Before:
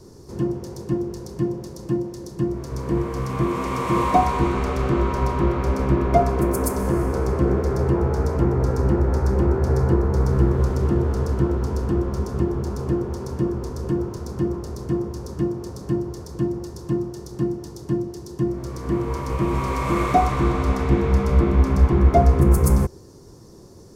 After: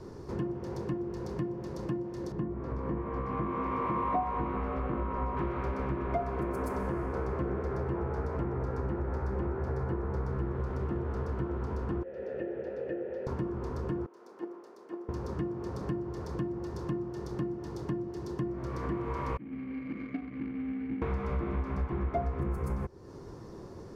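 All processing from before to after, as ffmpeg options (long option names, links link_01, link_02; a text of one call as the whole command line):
ffmpeg -i in.wav -filter_complex "[0:a]asettb=1/sr,asplit=3[link_01][link_02][link_03];[link_01]atrim=end=2.324[link_04];[link_02]atrim=start=2.32:end=5.37,asetpts=PTS-STARTPTS,afade=type=in:duration=0.004:curve=qsin,afade=type=out:start_time=3.046:duration=0.004:curve=qsin,lowpass=frequency=1100:poles=1,asplit=2[link_05][link_06];[link_06]adelay=19,volume=-6dB[link_07];[link_05][link_07]amix=inputs=2:normalize=0,atrim=end_sample=134505[link_08];[link_03]atrim=start=5.366[link_09];[link_04][link_08]acrossfade=duration=0.004:curve1=hsin:curve2=qsin[link_10];[link_10][link_09]acrossfade=duration=0.004:curve1=qsin:curve2=hsin,asettb=1/sr,asplit=3[link_11][link_12][link_13];[link_11]atrim=end=12.034[link_14];[link_12]atrim=start=12.03:end=13.27,asetpts=PTS-STARTPTS,afade=type=in:duration=0.004:curve=qsin,afade=type=out:start_time=1.236:duration=0.004:curve=qsin,acontrast=32,asplit=3[link_15][link_16][link_17];[link_15]bandpass=frequency=530:width_type=q:width=8,volume=0dB[link_18];[link_16]bandpass=frequency=1840:width_type=q:width=8,volume=-6dB[link_19];[link_17]bandpass=frequency=2480:width_type=q:width=8,volume=-9dB[link_20];[link_18][link_19][link_20]amix=inputs=3:normalize=0[link_21];[link_13]atrim=start=13.266[link_22];[link_14][link_21]acrossfade=duration=0.004:curve1=hsin:curve2=qsin[link_23];[link_23][link_22]acrossfade=duration=0.004:curve1=qsin:curve2=hsin,asettb=1/sr,asplit=3[link_24][link_25][link_26];[link_24]atrim=end=14.064[link_27];[link_25]atrim=start=14.06:end=15.09,asetpts=PTS-STARTPTS,afade=type=in:duration=0.004:curve=qsin,afade=type=out:start_time=1.026:duration=0.004:curve=qsin,agate=range=-16dB:threshold=-18dB:ratio=16:release=100:detection=peak,highpass=frequency=300:width=0.5412,highpass=frequency=300:width=1.3066,highshelf=frequency=5500:gain=4.5[link_28];[link_26]atrim=start=15.086[link_29];[link_27][link_28]acrossfade=duration=0.004:curve1=hsin:curve2=qsin[link_30];[link_30][link_29]acrossfade=duration=0.004:curve1=qsin:curve2=hsin,asettb=1/sr,asplit=3[link_31][link_32][link_33];[link_31]atrim=end=19.374[link_34];[link_32]atrim=start=19.37:end=21.02,asetpts=PTS-STARTPTS,afade=type=in:duration=0.004:curve=qsin,afade=type=out:start_time=1.646:duration=0.004:curve=qsin,asplit=3[link_35][link_36][link_37];[link_35]bandpass=frequency=270:width_type=q:width=8,volume=0dB[link_38];[link_36]bandpass=frequency=2290:width_type=q:width=8,volume=-6dB[link_39];[link_37]bandpass=frequency=3010:width_type=q:width=8,volume=-9dB[link_40];[link_38][link_39][link_40]amix=inputs=3:normalize=0,equalizer=frequency=350:width_type=o:width=0.25:gain=-13,adynamicsmooth=sensitivity=3.5:basefreq=710[link_41];[link_33]atrim=start=21.016[link_42];[link_34][link_41]acrossfade=duration=0.004:curve1=hsin:curve2=qsin[link_43];[link_43][link_42]acrossfade=duration=0.004:curve1=qsin:curve2=hsin,bass=frequency=250:gain=-1,treble=frequency=4000:gain=-15,acompressor=threshold=-33dB:ratio=4,equalizer=frequency=1800:width_type=o:width=2.6:gain=5" out.wav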